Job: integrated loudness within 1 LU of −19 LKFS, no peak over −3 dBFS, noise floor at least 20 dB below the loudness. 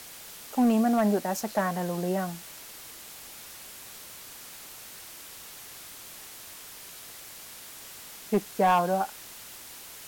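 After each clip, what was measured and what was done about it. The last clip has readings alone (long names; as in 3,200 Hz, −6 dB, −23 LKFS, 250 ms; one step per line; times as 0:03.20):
share of clipped samples 0.2%; peaks flattened at −16.0 dBFS; background noise floor −46 dBFS; target noise floor −47 dBFS; integrated loudness −27.0 LKFS; sample peak −16.0 dBFS; target loudness −19.0 LKFS
→ clipped peaks rebuilt −16 dBFS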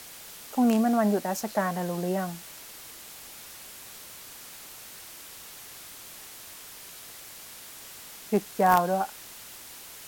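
share of clipped samples 0.0%; background noise floor −46 dBFS; target noise floor −47 dBFS
→ broadband denoise 6 dB, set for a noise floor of −46 dBFS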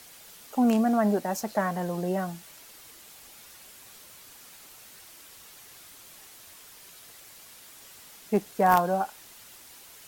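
background noise floor −50 dBFS; integrated loudness −26.5 LKFS; sample peak −7.0 dBFS; target loudness −19.0 LKFS
→ level +7.5 dB
brickwall limiter −3 dBFS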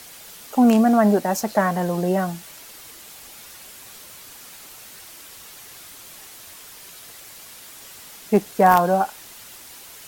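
integrated loudness −19.0 LKFS; sample peak −3.0 dBFS; background noise floor −43 dBFS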